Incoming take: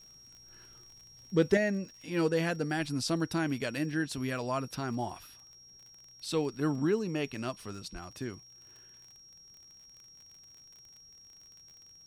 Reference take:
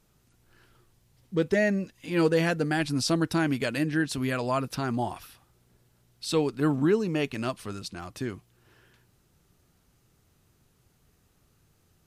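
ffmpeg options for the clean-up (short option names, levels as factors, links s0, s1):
-filter_complex "[0:a]adeclick=t=4,bandreject=f=5600:w=30,asplit=3[s0][s1][s2];[s0]afade=t=out:st=7.92:d=0.02[s3];[s1]highpass=f=140:w=0.5412,highpass=f=140:w=1.3066,afade=t=in:st=7.92:d=0.02,afade=t=out:st=8.04:d=0.02[s4];[s2]afade=t=in:st=8.04:d=0.02[s5];[s3][s4][s5]amix=inputs=3:normalize=0,asetnsamples=n=441:p=0,asendcmd='1.57 volume volume 5.5dB',volume=1"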